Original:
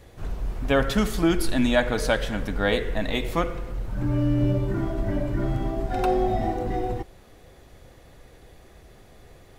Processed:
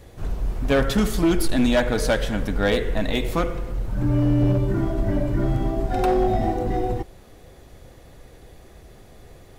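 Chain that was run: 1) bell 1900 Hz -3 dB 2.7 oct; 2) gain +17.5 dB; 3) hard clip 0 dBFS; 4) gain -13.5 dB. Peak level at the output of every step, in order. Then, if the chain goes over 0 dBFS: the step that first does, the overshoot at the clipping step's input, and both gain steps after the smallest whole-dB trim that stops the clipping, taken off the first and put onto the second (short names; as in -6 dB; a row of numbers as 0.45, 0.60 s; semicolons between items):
-9.0, +8.5, 0.0, -13.5 dBFS; step 2, 8.5 dB; step 2 +8.5 dB, step 4 -4.5 dB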